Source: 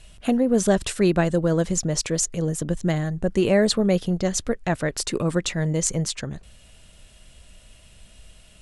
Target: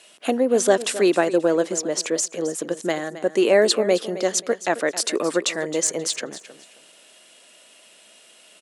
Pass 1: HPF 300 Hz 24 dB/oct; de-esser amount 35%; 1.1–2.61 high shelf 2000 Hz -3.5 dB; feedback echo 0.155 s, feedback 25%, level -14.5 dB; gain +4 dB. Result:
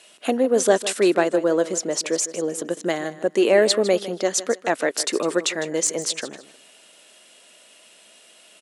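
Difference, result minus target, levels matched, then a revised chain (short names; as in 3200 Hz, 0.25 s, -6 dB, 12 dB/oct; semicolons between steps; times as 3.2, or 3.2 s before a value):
echo 0.111 s early
HPF 300 Hz 24 dB/oct; de-esser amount 35%; 1.1–2.61 high shelf 2000 Hz -3.5 dB; feedback echo 0.266 s, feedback 25%, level -14.5 dB; gain +4 dB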